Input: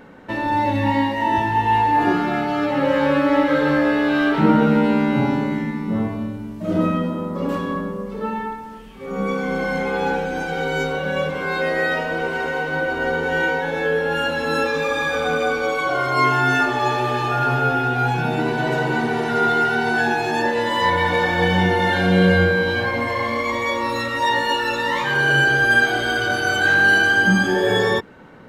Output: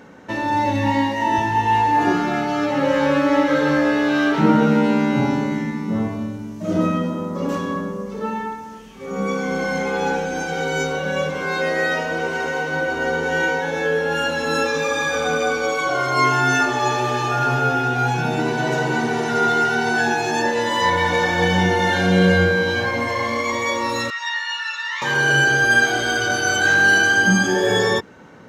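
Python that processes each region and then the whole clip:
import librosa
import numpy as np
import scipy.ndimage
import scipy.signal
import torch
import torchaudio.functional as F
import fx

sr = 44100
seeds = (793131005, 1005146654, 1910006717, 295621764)

y = fx.chain(x, sr, fx.highpass(hz=1300.0, slope=24),
    fx.air_absorb(metres=140.0), at=(24.1, 25.02))
y = scipy.signal.sosfilt(scipy.signal.butter(2, 58.0, 'highpass', fs=sr, output='sos'), y)
y = fx.peak_eq(y, sr, hz=6200.0, db=11.0, octaves=0.53)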